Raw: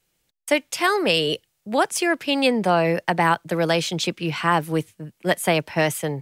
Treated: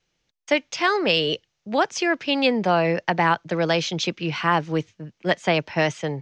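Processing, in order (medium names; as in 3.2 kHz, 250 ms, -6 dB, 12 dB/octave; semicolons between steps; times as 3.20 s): elliptic low-pass 6.3 kHz, stop band 60 dB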